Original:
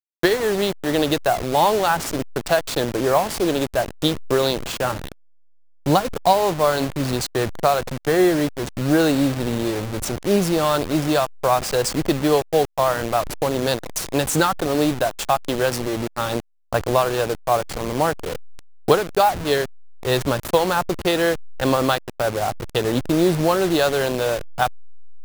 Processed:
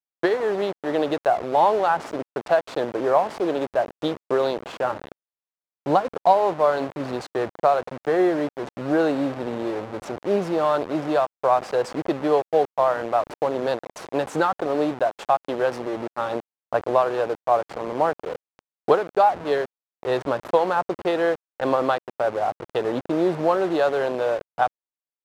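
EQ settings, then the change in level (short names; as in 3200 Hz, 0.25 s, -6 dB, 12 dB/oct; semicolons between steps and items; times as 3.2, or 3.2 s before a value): band-pass 710 Hz, Q 0.75; 0.0 dB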